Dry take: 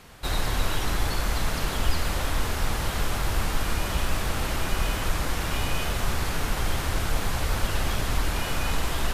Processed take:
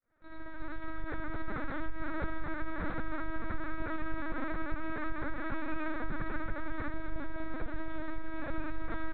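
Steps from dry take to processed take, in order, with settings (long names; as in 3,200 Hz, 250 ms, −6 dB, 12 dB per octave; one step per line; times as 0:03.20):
fade in at the beginning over 1.89 s
0:06.91–0:08.83: parametric band 1,500 Hz −4 dB 1.6 octaves
downward compressor 3 to 1, threshold −27 dBFS, peak gain reduction 10 dB
high-frequency loss of the air 190 metres
phaser with its sweep stopped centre 600 Hz, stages 8
single-tap delay 222 ms −22.5 dB
linear-prediction vocoder at 8 kHz pitch kept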